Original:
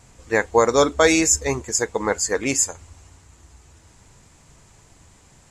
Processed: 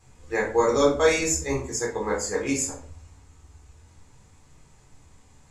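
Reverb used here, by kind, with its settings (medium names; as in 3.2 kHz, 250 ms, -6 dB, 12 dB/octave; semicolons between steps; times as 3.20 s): simulated room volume 400 m³, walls furnished, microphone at 3.9 m; trim -12 dB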